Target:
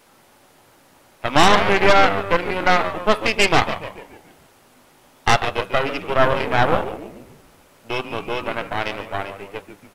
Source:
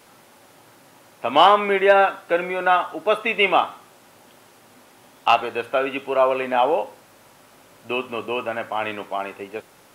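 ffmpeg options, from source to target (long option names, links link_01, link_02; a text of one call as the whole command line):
ffmpeg -i in.wav -filter_complex "[0:a]aeval=exprs='if(lt(val(0),0),0.708*val(0),val(0))':channel_layout=same,asplit=7[link_01][link_02][link_03][link_04][link_05][link_06][link_07];[link_02]adelay=143,afreqshift=-97,volume=-8.5dB[link_08];[link_03]adelay=286,afreqshift=-194,volume=-14.3dB[link_09];[link_04]adelay=429,afreqshift=-291,volume=-20.2dB[link_10];[link_05]adelay=572,afreqshift=-388,volume=-26dB[link_11];[link_06]adelay=715,afreqshift=-485,volume=-31.9dB[link_12];[link_07]adelay=858,afreqshift=-582,volume=-37.7dB[link_13];[link_01][link_08][link_09][link_10][link_11][link_12][link_13]amix=inputs=7:normalize=0,aeval=exprs='0.75*(cos(1*acos(clip(val(0)/0.75,-1,1)))-cos(1*PI/2))+0.237*(cos(6*acos(clip(val(0)/0.75,-1,1)))-cos(6*PI/2))':channel_layout=same,volume=-1.5dB" out.wav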